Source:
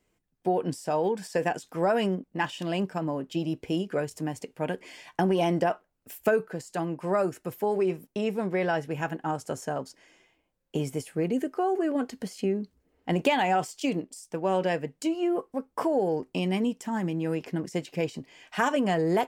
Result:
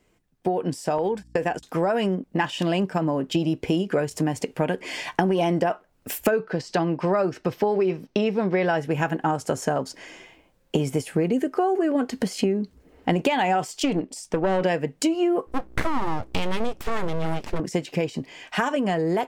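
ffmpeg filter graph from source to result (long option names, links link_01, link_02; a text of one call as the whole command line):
ffmpeg -i in.wav -filter_complex "[0:a]asettb=1/sr,asplit=3[link_01][link_02][link_03];[link_01]atrim=end=0.984[link_04];[link_02]atrim=start=0.98:end=1.63,asetpts=PTS-STARTPTS,afade=type=in:duration=0.004:curve=qsin,afade=type=out:start_time=0.646:duration=0.004:curve=qsin,highpass=frequency=81:poles=1,agate=range=-39dB:threshold=-38dB:ratio=16:release=100:detection=peak,aeval=exprs='val(0)+0.00112*(sin(2*PI*60*n/s)+sin(2*PI*2*60*n/s)/2+sin(2*PI*3*60*n/s)/3+sin(2*PI*4*60*n/s)/4+sin(2*PI*5*60*n/s)/5)':channel_layout=same[link_05];[link_03]atrim=start=1.626[link_06];[link_04][link_05]acrossfade=duration=0.004:curve1=hsin:curve2=qsin[link_07];[link_07][link_06]acrossfade=duration=0.004:curve1=qsin:curve2=hsin,asettb=1/sr,asplit=3[link_08][link_09][link_10];[link_08]atrim=end=6.314[link_11];[link_09]atrim=start=6.31:end=8.66,asetpts=PTS-STARTPTS,afade=type=in:duration=0.004:curve=qsin,afade=type=out:start_time=2.346:duration=0.004:curve=qsin,highshelf=frequency=7400:width_type=q:width=1.5:gain=-13,bandreject=frequency=7000:width=9.9[link_12];[link_10]atrim=start=8.656[link_13];[link_11][link_12]acrossfade=duration=0.004:curve1=hsin:curve2=qsin[link_14];[link_14][link_13]acrossfade=duration=0.004:curve1=qsin:curve2=hsin,asettb=1/sr,asplit=3[link_15][link_16][link_17];[link_15]atrim=end=13.834[link_18];[link_16]atrim=start=13.83:end=14.63,asetpts=PTS-STARTPTS,afade=type=in:duration=0.004:curve=qsin,afade=type=out:start_time=0.796:duration=0.004:curve=qsin,highshelf=frequency=6700:gain=-9,aeval=exprs='(tanh(14.1*val(0)+0.3)-tanh(0.3))/14.1':channel_layout=same[link_19];[link_17]atrim=start=14.626[link_20];[link_18][link_19]acrossfade=duration=0.004:curve1=hsin:curve2=qsin[link_21];[link_21][link_20]acrossfade=duration=0.004:curve1=qsin:curve2=hsin,asettb=1/sr,asplit=3[link_22][link_23][link_24];[link_22]atrim=end=15.474[link_25];[link_23]atrim=start=15.47:end=17.6,asetpts=PTS-STARTPTS,afade=type=in:duration=0.004:curve=qsin,afade=type=out:start_time=2.126:duration=0.004:curve=qsin,aeval=exprs='val(0)+0.00178*(sin(2*PI*60*n/s)+sin(2*PI*2*60*n/s)/2+sin(2*PI*3*60*n/s)/3+sin(2*PI*4*60*n/s)/4+sin(2*PI*5*60*n/s)/5)':channel_layout=same,aeval=exprs='abs(val(0))':channel_layout=same[link_26];[link_24]atrim=start=17.596[link_27];[link_25][link_26]acrossfade=duration=0.004:curve1=hsin:curve2=qsin[link_28];[link_28][link_27]acrossfade=duration=0.004:curve1=qsin:curve2=hsin,dynaudnorm=framelen=690:gausssize=7:maxgain=8dB,highshelf=frequency=7600:gain=-5.5,acompressor=threshold=-30dB:ratio=4,volume=8.5dB" out.wav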